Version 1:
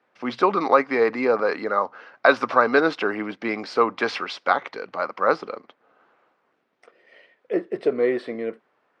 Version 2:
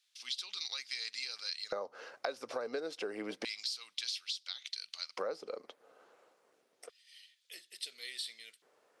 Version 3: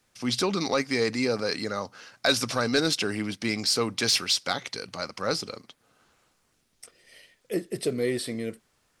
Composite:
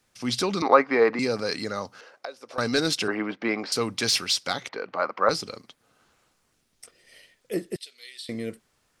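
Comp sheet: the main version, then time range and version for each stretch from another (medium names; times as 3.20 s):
3
0.62–1.19 s: from 1
2.01–2.58 s: from 2
3.08–3.72 s: from 1
4.69–5.29 s: from 1
7.76–8.29 s: from 2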